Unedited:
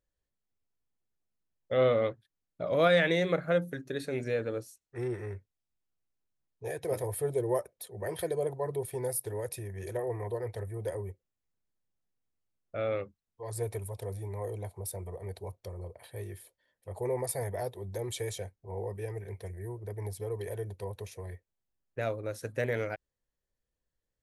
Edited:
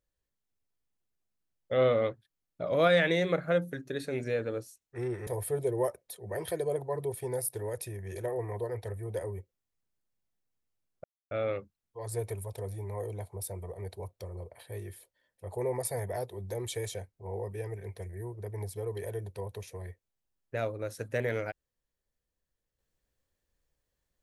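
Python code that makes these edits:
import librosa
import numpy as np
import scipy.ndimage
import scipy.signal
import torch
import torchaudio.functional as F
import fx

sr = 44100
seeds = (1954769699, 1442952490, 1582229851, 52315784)

y = fx.edit(x, sr, fx.cut(start_s=5.27, length_s=1.71),
    fx.insert_silence(at_s=12.75, length_s=0.27), tone=tone)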